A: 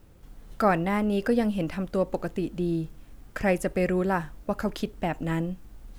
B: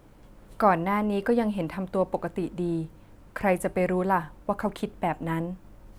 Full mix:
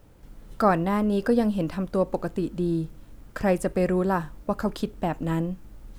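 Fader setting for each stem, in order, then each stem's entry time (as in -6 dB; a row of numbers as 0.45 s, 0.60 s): -0.5 dB, -6.5 dB; 0.00 s, 0.00 s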